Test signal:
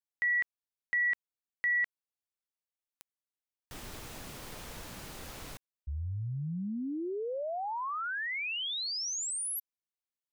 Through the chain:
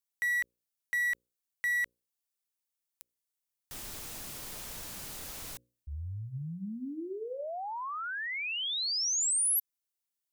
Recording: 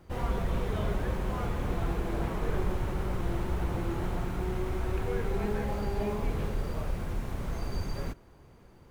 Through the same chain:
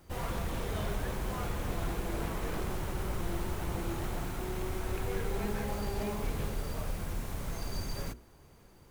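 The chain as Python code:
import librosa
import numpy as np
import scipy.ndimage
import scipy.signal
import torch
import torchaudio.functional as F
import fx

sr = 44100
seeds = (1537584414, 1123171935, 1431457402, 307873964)

y = np.minimum(x, 2.0 * 10.0 ** (-26.0 / 20.0) - x)
y = fx.high_shelf(y, sr, hz=4500.0, db=11.5)
y = fx.hum_notches(y, sr, base_hz=60, count=9)
y = F.gain(torch.from_numpy(y), -2.5).numpy()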